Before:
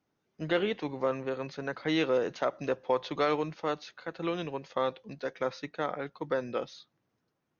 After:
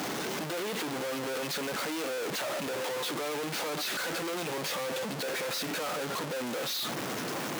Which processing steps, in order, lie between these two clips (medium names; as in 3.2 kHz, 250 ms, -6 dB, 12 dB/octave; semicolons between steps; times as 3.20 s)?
one-bit comparator; high-pass 200 Hz 12 dB/octave